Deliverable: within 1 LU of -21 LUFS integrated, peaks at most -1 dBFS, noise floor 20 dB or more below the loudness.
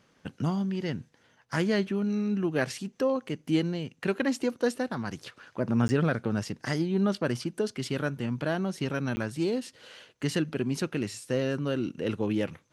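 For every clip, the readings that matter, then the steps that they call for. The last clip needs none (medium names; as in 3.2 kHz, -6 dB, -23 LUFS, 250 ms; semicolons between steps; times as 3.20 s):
dropouts 2; longest dropout 10 ms; loudness -30.0 LUFS; peak level -12.5 dBFS; loudness target -21.0 LUFS
-> interpolate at 5.88/9.16 s, 10 ms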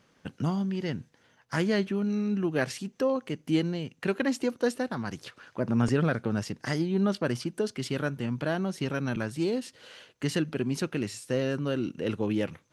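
dropouts 0; loudness -30.0 LUFS; peak level -12.5 dBFS; loudness target -21.0 LUFS
-> trim +9 dB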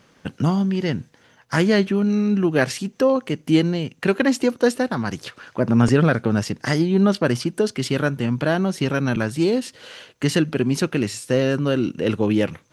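loudness -21.0 LUFS; peak level -3.5 dBFS; noise floor -56 dBFS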